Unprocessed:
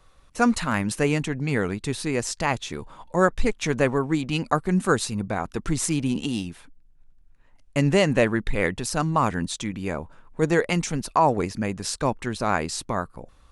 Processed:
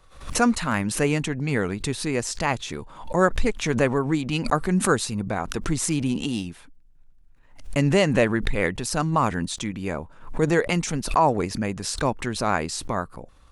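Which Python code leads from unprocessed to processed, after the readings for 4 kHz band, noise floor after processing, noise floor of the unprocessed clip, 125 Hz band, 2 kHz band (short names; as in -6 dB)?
+1.0 dB, -51 dBFS, -55 dBFS, +0.5 dB, +0.5 dB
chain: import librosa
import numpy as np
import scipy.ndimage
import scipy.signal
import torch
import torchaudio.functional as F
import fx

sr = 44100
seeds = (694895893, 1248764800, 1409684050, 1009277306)

y = fx.pre_swell(x, sr, db_per_s=110.0)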